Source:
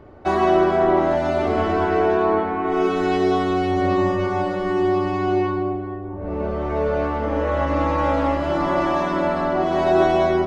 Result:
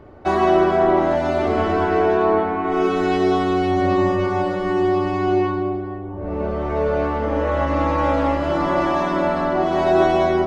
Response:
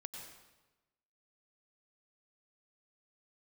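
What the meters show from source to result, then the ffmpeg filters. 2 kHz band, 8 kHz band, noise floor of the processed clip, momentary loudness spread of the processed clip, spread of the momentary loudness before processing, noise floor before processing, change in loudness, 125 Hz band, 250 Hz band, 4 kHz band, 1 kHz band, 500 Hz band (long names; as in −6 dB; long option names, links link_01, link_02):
+1.0 dB, can't be measured, −29 dBFS, 7 LU, 7 LU, −30 dBFS, +1.0 dB, +1.0 dB, +1.0 dB, +1.0 dB, +1.0 dB, +1.0 dB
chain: -filter_complex "[0:a]asplit=2[link_01][link_02];[1:a]atrim=start_sample=2205,asetrate=22932,aresample=44100[link_03];[link_02][link_03]afir=irnorm=-1:irlink=0,volume=-16dB[link_04];[link_01][link_04]amix=inputs=2:normalize=0"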